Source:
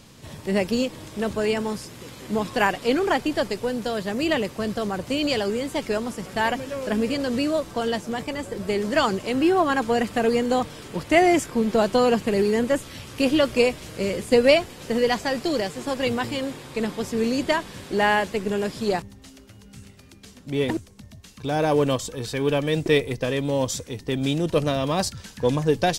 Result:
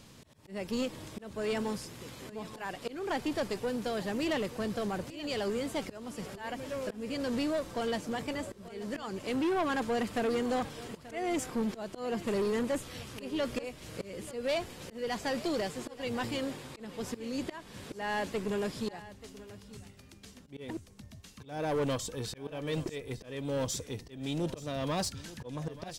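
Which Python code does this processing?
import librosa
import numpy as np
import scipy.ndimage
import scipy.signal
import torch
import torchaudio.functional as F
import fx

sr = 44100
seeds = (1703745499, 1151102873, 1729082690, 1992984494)

p1 = fx.auto_swell(x, sr, attack_ms=359.0)
p2 = 10.0 ** (-20.5 / 20.0) * np.tanh(p1 / 10.0 ** (-20.5 / 20.0))
p3 = p2 + fx.echo_single(p2, sr, ms=883, db=-17.0, dry=0)
y = F.gain(torch.from_numpy(p3), -5.5).numpy()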